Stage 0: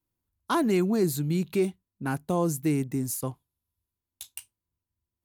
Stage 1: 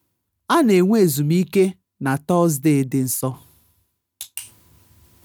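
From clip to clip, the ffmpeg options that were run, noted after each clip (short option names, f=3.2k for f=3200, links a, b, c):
-af "highpass=81,areverse,acompressor=mode=upward:threshold=-40dB:ratio=2.5,areverse,volume=9dB"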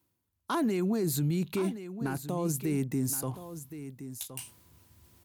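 -af "alimiter=limit=-16dB:level=0:latency=1:release=20,aecho=1:1:1070:0.251,volume=-6.5dB"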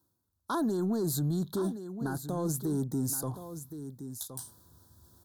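-filter_complex "[0:a]asplit=2[a][b];[b]asoftclip=type=tanh:threshold=-31dB,volume=-4.5dB[c];[a][c]amix=inputs=2:normalize=0,asuperstop=centerf=2400:order=8:qfactor=1.3,volume=-3.5dB"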